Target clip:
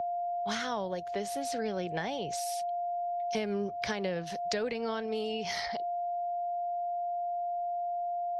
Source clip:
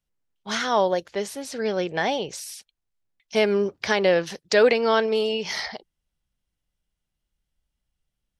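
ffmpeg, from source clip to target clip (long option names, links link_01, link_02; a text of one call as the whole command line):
ffmpeg -i in.wav -filter_complex "[0:a]aeval=exprs='val(0)+0.0355*sin(2*PI*700*n/s)':channel_layout=same,acrossover=split=160[link_01][link_02];[link_02]acompressor=threshold=-31dB:ratio=10[link_03];[link_01][link_03]amix=inputs=2:normalize=0" out.wav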